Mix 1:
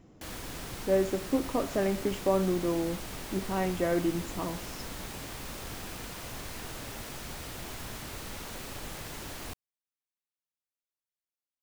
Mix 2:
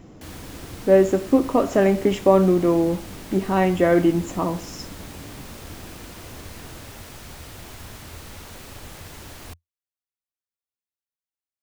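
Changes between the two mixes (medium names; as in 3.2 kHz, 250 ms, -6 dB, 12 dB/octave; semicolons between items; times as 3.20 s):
speech +11.0 dB; background: add peaking EQ 85 Hz +9 dB 0.47 oct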